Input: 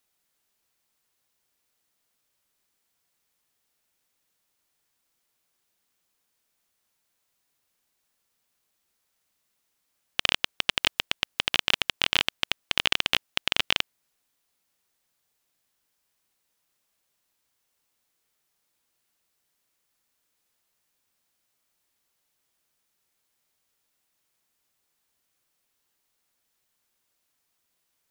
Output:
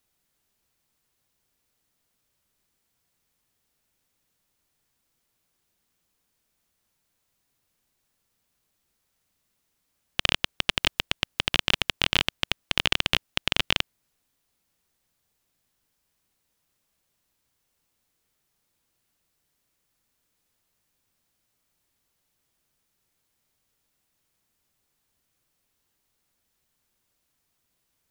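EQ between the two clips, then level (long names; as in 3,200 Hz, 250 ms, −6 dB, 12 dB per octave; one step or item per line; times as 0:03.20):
low-shelf EQ 260 Hz +10.5 dB
0.0 dB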